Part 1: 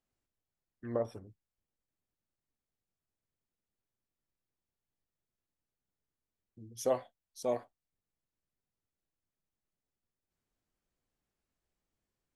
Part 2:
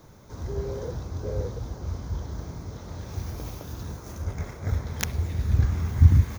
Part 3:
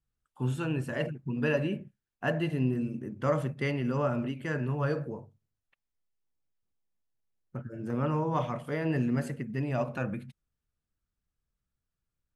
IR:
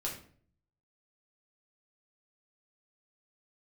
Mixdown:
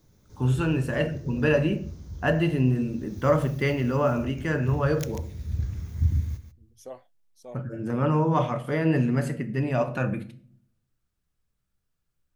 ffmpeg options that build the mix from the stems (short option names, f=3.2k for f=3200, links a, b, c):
-filter_complex "[0:a]volume=-10.5dB[a];[1:a]equalizer=f=930:t=o:w=2.1:g=-11,volume=-9dB,asplit=3[b][c][d];[c]volume=-13.5dB[e];[d]volume=-8.5dB[f];[2:a]volume=3dB,asplit=2[g][h];[h]volume=-7.5dB[i];[3:a]atrim=start_sample=2205[j];[e][i]amix=inputs=2:normalize=0[k];[k][j]afir=irnorm=-1:irlink=0[l];[f]aecho=0:1:141:1[m];[a][b][g][l][m]amix=inputs=5:normalize=0"